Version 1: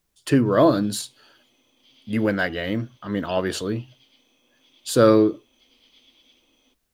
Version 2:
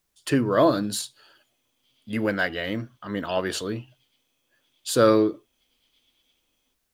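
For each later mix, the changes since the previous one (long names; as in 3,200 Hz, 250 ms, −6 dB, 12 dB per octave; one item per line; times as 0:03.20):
background −10.5 dB
master: add low-shelf EQ 470 Hz −5.5 dB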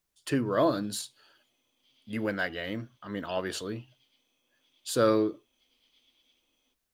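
speech −6.0 dB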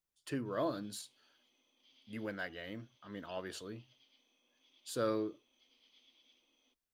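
speech −10.5 dB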